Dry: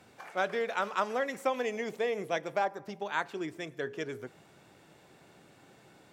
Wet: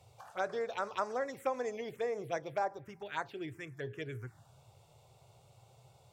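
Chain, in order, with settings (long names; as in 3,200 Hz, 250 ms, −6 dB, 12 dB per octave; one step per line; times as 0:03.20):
phaser swept by the level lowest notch 260 Hz, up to 3,100 Hz, full sweep at −27.5 dBFS
low shelf with overshoot 150 Hz +7 dB, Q 3
level −2.5 dB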